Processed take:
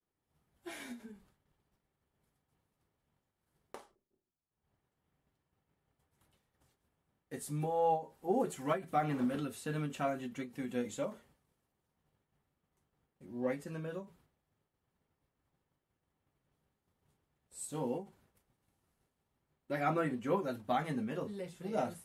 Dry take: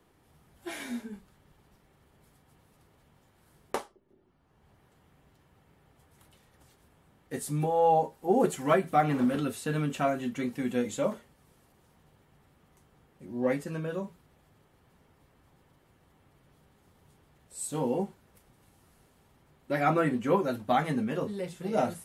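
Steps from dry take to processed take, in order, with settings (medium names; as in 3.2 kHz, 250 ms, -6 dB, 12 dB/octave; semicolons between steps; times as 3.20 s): expander -54 dBFS; endings held to a fixed fall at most 180 dB/s; trim -7 dB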